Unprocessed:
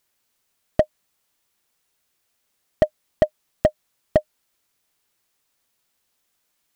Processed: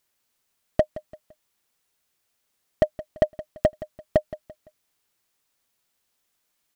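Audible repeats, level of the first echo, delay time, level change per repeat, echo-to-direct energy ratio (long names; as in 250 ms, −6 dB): 3, −16.5 dB, 170 ms, −9.0 dB, −16.0 dB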